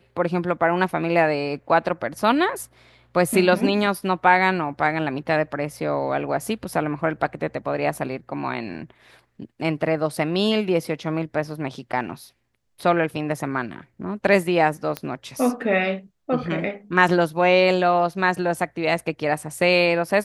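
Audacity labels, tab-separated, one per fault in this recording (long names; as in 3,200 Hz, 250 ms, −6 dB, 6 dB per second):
14.970000	14.970000	click −12 dBFS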